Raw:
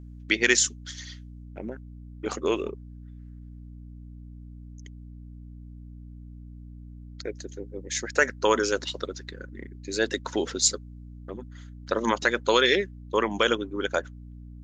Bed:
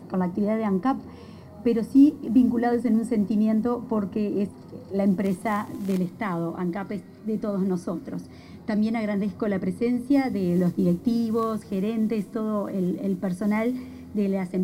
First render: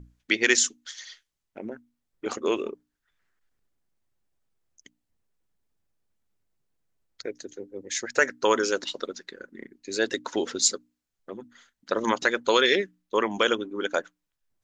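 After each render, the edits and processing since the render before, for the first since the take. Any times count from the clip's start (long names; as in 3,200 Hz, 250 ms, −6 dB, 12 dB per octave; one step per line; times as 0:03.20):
mains-hum notches 60/120/180/240/300 Hz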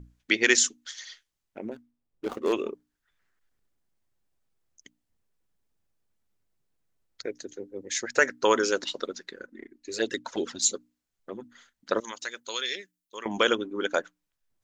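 0:01.71–0:02.53: running median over 25 samples
0:09.46–0:10.75: flanger swept by the level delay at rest 4 ms, full sweep at −20 dBFS
0:12.00–0:13.26: first-order pre-emphasis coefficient 0.9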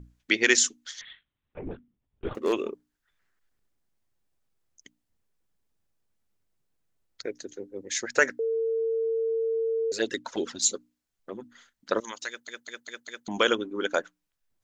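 0:01.01–0:02.35: linear-prediction vocoder at 8 kHz whisper
0:08.39–0:09.92: beep over 452 Hz −24 dBFS
0:12.28: stutter in place 0.20 s, 5 plays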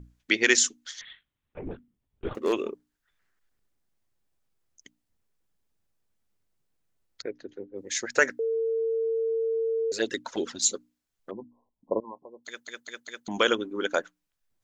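0:07.22–0:07.78: high-frequency loss of the air 330 metres
0:11.31–0:12.45: linear-phase brick-wall low-pass 1,100 Hz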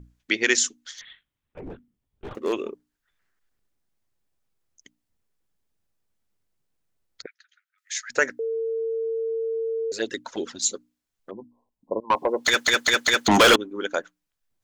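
0:00.95–0:02.33: gain into a clipping stage and back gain 32.5 dB
0:07.26–0:08.10: linear-phase brick-wall high-pass 1,200 Hz
0:12.10–0:13.56: mid-hump overdrive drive 36 dB, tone 5,100 Hz, clips at −7 dBFS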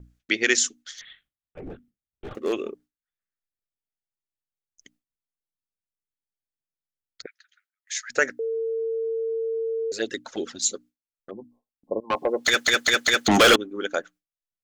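notch filter 970 Hz, Q 5.3
noise gate with hold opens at −53 dBFS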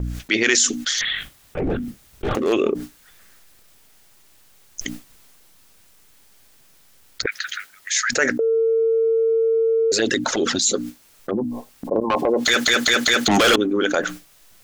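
transient designer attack −8 dB, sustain +2 dB
envelope flattener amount 70%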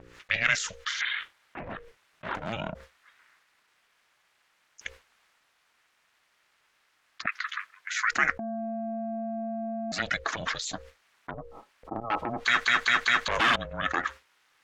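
resonant band-pass 1,600 Hz, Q 1.2
ring modulation 230 Hz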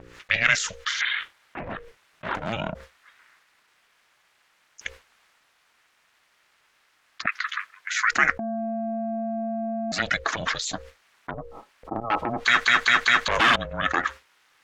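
level +4.5 dB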